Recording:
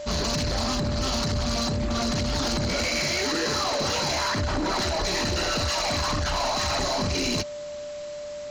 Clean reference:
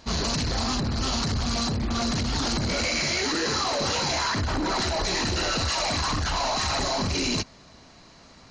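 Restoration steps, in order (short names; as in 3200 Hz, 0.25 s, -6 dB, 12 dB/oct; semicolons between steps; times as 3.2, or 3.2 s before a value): clip repair -20 dBFS; notch 590 Hz, Q 30; noise print and reduce 15 dB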